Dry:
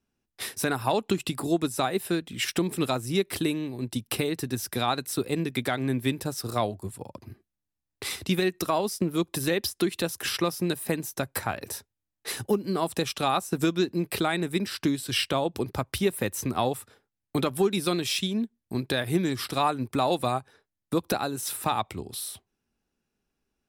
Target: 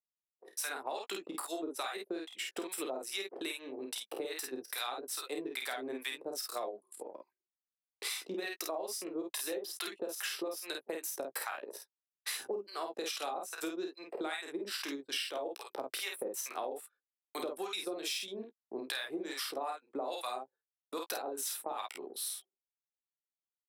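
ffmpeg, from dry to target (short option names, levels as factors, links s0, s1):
-filter_complex "[0:a]acrossover=split=810[s0][s1];[s0]aeval=exprs='val(0)*(1-1/2+1/2*cos(2*PI*2.4*n/s))':c=same[s2];[s1]aeval=exprs='val(0)*(1-1/2-1/2*cos(2*PI*2.4*n/s))':c=same[s3];[s2][s3]amix=inputs=2:normalize=0,areverse,acompressor=mode=upward:threshold=0.00398:ratio=2.5,areverse,anlmdn=0.1,aecho=1:1:31|50:0.376|0.668,agate=range=0.0224:threshold=0.00224:ratio=3:detection=peak,highpass=f=380:w=0.5412,highpass=f=380:w=1.3066,asplit=2[s4][s5];[s5]adelay=15,volume=0.251[s6];[s4][s6]amix=inputs=2:normalize=0,acompressor=threshold=0.0178:ratio=6"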